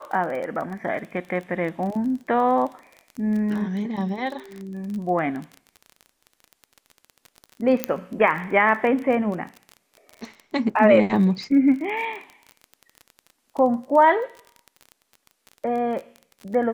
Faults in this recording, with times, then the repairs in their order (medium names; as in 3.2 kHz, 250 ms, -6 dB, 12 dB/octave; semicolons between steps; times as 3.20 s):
crackle 26 per s -30 dBFS
7.84 s: pop -5 dBFS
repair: de-click